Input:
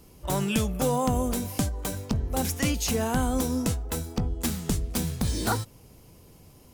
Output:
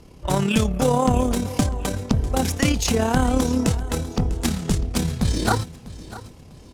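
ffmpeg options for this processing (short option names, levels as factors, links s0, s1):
-af "adynamicsmooth=sensitivity=7:basefreq=6600,tremolo=f=35:d=0.519,aecho=1:1:648|1296|1944:0.141|0.0509|0.0183,volume=2.66"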